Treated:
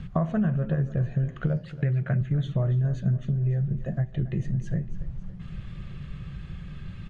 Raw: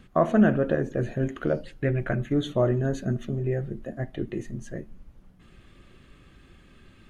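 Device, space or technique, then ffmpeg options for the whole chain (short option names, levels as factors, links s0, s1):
jukebox: -filter_complex "[0:a]asettb=1/sr,asplit=3[s0][s1][s2];[s0]atrim=end=1.574[s3];[s1]atrim=start=1.57:end=2.21,asetpts=PTS-STARTPTS,afade=t=in:d=0.004:c=qsin,afade=t=out:st=0.636:d=0.004:c=qsin,highpass=120[s4];[s2]atrim=start=2.206[s5];[s3][s4]acrossfade=d=0.004:c1=hsin:c2=qsin[s6];[s6][s5]acrossfade=d=0.004:c1=qsin:c2=hsin,lowpass=5700,lowshelf=f=210:t=q:w=3:g=9,acompressor=threshold=0.0316:ratio=5,aecho=1:1:280|560|840|1120:0.168|0.0823|0.0403|0.0198,volume=1.88"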